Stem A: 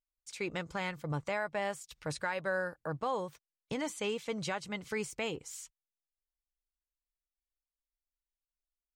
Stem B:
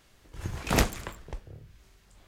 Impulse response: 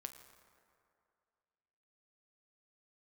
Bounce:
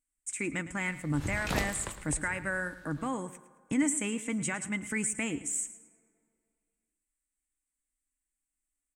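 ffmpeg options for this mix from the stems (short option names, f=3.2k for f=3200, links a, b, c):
-filter_complex "[0:a]firequalizer=gain_entry='entry(180,0);entry(280,11);entry(410,-9);entry(1000,-6);entry(2000,4);entry(4300,-18);entry(8000,15);entry(13000,-5)':delay=0.05:min_phase=1,volume=1dB,asplit=3[a][b][c];[b]volume=-4.5dB[d];[c]volume=-13dB[e];[1:a]equalizer=f=4k:t=o:w=0.39:g=4,alimiter=limit=-14.5dB:level=0:latency=1:release=259,adelay=800,volume=-1.5dB,asplit=2[f][g];[g]volume=-12.5dB[h];[2:a]atrim=start_sample=2205[i];[d][i]afir=irnorm=-1:irlink=0[j];[e][h]amix=inputs=2:normalize=0,aecho=0:1:109|218|327|436:1|0.3|0.09|0.027[k];[a][f][j][k]amix=inputs=4:normalize=0"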